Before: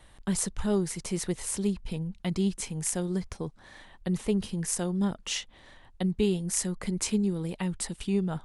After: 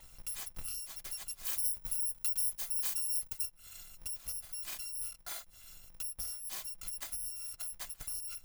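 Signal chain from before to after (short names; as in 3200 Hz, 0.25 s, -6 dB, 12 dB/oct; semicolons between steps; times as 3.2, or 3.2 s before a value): FFT order left unsorted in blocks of 256 samples; bell 290 Hz -7.5 dB 1.2 oct; compressor 4:1, threshold -41 dBFS, peak gain reduction 16.5 dB; 1.45–3.46 high shelf 7200 Hz +9 dB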